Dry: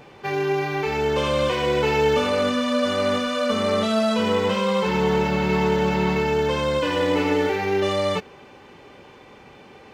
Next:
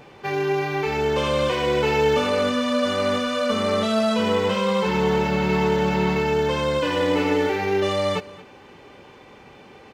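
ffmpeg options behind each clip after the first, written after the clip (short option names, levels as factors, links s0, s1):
-af "aecho=1:1:224:0.1"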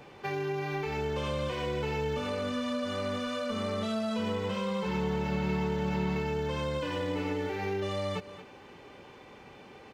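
-filter_complex "[0:a]acrossover=split=180[s0][s1];[s1]acompressor=threshold=0.0447:ratio=6[s2];[s0][s2]amix=inputs=2:normalize=0,volume=0.596"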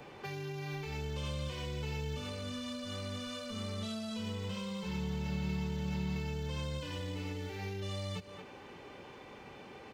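-filter_complex "[0:a]acrossover=split=170|3000[s0][s1][s2];[s1]acompressor=threshold=0.00708:ratio=10[s3];[s0][s3][s2]amix=inputs=3:normalize=0"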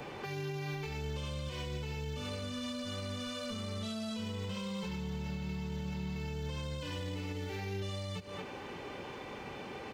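-af "alimiter=level_in=4.47:limit=0.0631:level=0:latency=1:release=179,volume=0.224,volume=2.11"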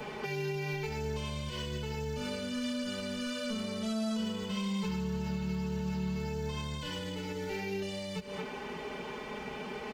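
-af "aecho=1:1:4.7:0.92,volume=1.12"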